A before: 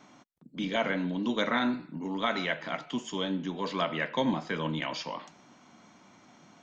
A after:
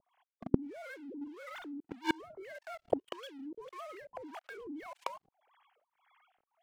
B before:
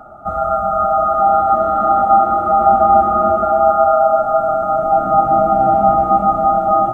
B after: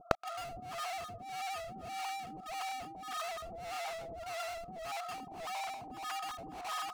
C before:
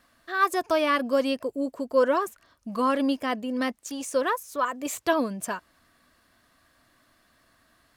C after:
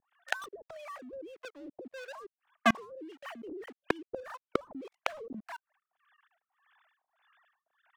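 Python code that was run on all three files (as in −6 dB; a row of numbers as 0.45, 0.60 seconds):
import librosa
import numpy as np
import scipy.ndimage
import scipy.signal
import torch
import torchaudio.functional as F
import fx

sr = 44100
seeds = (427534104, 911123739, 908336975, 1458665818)

y = fx.sine_speech(x, sr)
y = fx.low_shelf(y, sr, hz=390.0, db=10.5)
y = fx.level_steps(y, sr, step_db=19)
y = fx.leveller(y, sr, passes=5)
y = fx.rider(y, sr, range_db=4, speed_s=0.5)
y = np.clip(y, -10.0 ** (-16.0 / 20.0), 10.0 ** (-16.0 / 20.0))
y = fx.harmonic_tremolo(y, sr, hz=1.7, depth_pct=100, crossover_hz=580.0)
y = fx.gate_flip(y, sr, shuts_db=-28.0, range_db=-37)
y = y * librosa.db_to_amplitude(17.0)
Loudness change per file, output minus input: −9.5, −27.5, −11.5 LU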